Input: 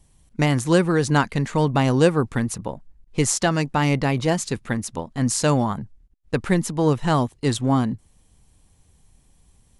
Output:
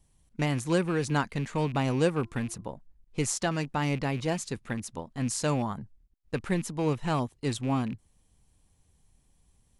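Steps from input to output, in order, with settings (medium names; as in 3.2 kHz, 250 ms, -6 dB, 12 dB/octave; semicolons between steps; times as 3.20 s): rattle on loud lows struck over -24 dBFS, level -27 dBFS; 2.22–2.65 s: de-hum 343.2 Hz, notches 4; trim -8.5 dB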